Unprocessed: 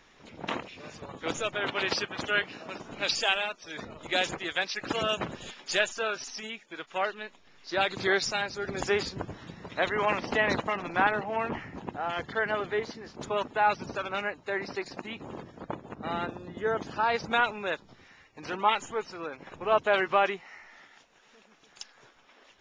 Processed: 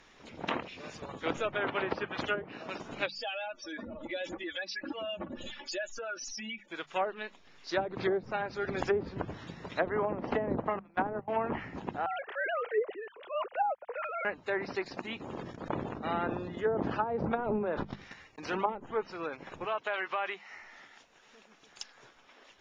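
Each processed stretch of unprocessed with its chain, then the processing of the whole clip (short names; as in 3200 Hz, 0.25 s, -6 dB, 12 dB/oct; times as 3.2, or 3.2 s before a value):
3.06–6.68 spectral contrast raised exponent 2.1 + comb 3.5 ms, depth 93% + compressor 3:1, threshold -37 dBFS
10.79–11.28 gate -30 dBFS, range -24 dB + LPF 2000 Hz 6 dB/oct + core saturation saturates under 900 Hz
12.06–14.25 sine-wave speech + transient shaper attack -3 dB, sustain +9 dB
15.35–18.66 gate -51 dBFS, range -37 dB + sustainer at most 38 dB/s
19.65–20.5 HPF 1000 Hz 6 dB/oct + compressor 3:1, threshold -29 dBFS
whole clip: treble ducked by the level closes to 480 Hz, closed at -22.5 dBFS; notches 50/100/150/200 Hz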